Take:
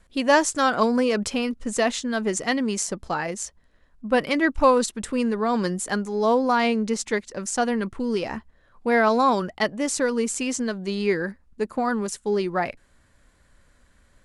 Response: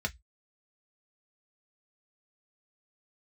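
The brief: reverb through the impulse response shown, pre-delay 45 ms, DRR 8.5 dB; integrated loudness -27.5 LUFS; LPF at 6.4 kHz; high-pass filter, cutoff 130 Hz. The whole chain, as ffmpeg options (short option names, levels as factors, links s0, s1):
-filter_complex "[0:a]highpass=130,lowpass=6400,asplit=2[s0][s1];[1:a]atrim=start_sample=2205,adelay=45[s2];[s1][s2]afir=irnorm=-1:irlink=0,volume=0.224[s3];[s0][s3]amix=inputs=2:normalize=0,volume=0.631"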